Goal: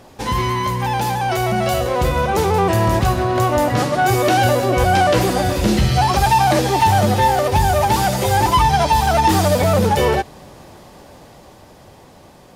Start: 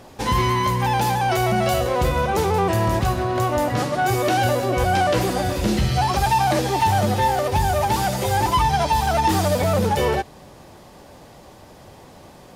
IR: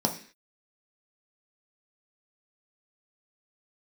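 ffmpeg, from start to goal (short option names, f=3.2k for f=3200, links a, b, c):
-af "dynaudnorm=f=380:g=11:m=5dB"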